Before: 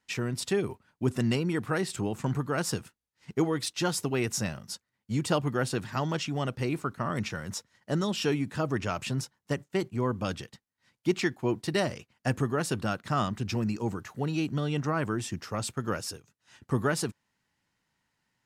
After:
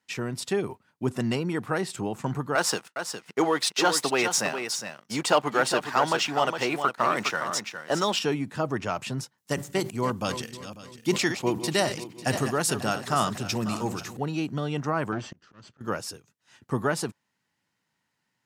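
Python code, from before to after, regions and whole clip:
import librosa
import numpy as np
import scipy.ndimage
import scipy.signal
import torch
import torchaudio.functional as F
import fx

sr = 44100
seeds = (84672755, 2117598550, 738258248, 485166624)

y = fx.chain(x, sr, fx.weighting(curve='A'),
    fx.leveller(passes=2),
    fx.echo_single(ms=410, db=-8.0), at=(2.55, 8.19))
y = fx.chain(y, sr, fx.reverse_delay_fb(ms=273, feedback_pct=57, wet_db=-11),
    fx.high_shelf(hz=3600.0, db=12.0),
    fx.sustainer(db_per_s=120.0), at=(9.38, 14.17))
y = fx.chain(y, sr, fx.lower_of_two(delay_ms=0.66),
    fx.lowpass(hz=5900.0, slope=24),
    fx.auto_swell(attack_ms=528.0), at=(15.12, 15.81))
y = scipy.signal.sosfilt(scipy.signal.butter(2, 110.0, 'highpass', fs=sr, output='sos'), y)
y = fx.dynamic_eq(y, sr, hz=820.0, q=1.2, threshold_db=-43.0, ratio=4.0, max_db=5)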